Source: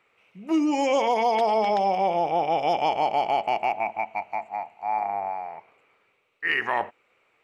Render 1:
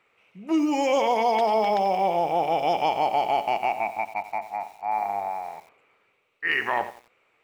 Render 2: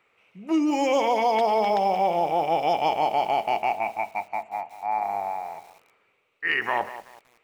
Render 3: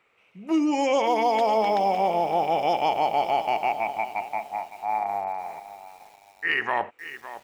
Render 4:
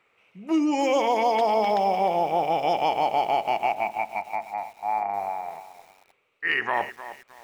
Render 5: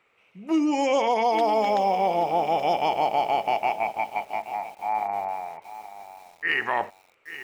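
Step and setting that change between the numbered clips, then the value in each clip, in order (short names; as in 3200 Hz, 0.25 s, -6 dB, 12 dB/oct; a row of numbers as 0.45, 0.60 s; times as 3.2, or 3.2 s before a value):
lo-fi delay, time: 89, 188, 561, 309, 828 ms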